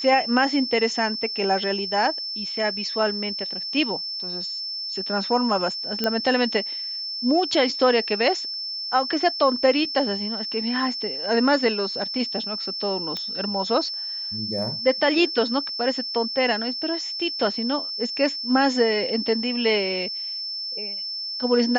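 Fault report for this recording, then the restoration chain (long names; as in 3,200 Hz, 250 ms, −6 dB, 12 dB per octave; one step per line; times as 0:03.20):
whistle 5,300 Hz −28 dBFS
0:06.04: click −9 dBFS
0:13.17: click −16 dBFS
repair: click removal
notch filter 5,300 Hz, Q 30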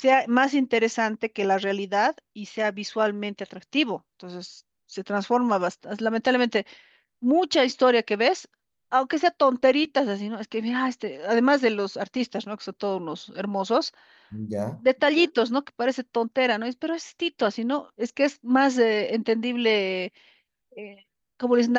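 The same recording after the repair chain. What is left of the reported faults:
none of them is left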